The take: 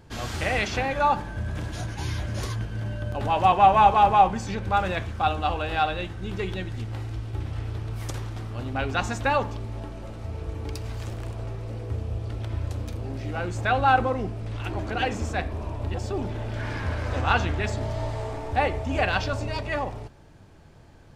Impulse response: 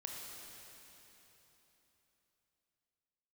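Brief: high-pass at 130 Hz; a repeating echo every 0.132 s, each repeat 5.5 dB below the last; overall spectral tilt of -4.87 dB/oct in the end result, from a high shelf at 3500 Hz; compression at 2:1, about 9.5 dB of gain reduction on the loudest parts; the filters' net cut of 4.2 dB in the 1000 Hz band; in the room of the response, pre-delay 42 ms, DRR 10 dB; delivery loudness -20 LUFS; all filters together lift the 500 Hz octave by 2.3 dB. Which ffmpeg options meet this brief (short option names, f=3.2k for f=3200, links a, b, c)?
-filter_complex "[0:a]highpass=130,equalizer=f=500:t=o:g=5.5,equalizer=f=1k:t=o:g=-8,highshelf=f=3.5k:g=-7,acompressor=threshold=-33dB:ratio=2,aecho=1:1:132|264|396|528|660|792|924:0.531|0.281|0.149|0.079|0.0419|0.0222|0.0118,asplit=2[a][b];[1:a]atrim=start_sample=2205,adelay=42[c];[b][c]afir=irnorm=-1:irlink=0,volume=-8.5dB[d];[a][d]amix=inputs=2:normalize=0,volume=13dB"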